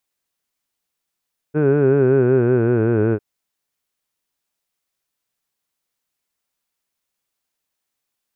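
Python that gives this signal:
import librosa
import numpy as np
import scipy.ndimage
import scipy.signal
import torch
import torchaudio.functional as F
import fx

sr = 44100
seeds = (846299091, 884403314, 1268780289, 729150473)

y = fx.formant_vowel(sr, seeds[0], length_s=1.65, hz=147.0, glide_st=-5.5, vibrato_hz=5.3, vibrato_st=0.9, f1_hz=400.0, f2_hz=1500.0, f3_hz=2500.0)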